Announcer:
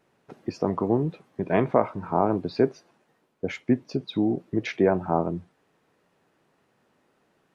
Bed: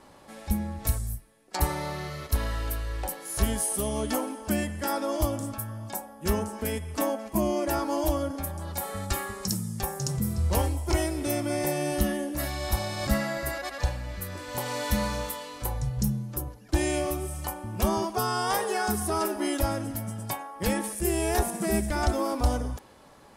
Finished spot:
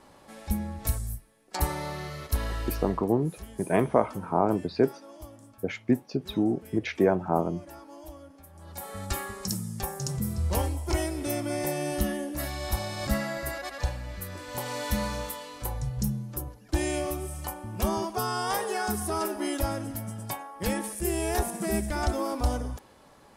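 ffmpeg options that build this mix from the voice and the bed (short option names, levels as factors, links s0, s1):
-filter_complex "[0:a]adelay=2200,volume=0.841[s0];[1:a]volume=5.62,afade=t=out:st=2.82:d=0.22:silence=0.141254,afade=t=in:st=8.49:d=0.62:silence=0.149624[s1];[s0][s1]amix=inputs=2:normalize=0"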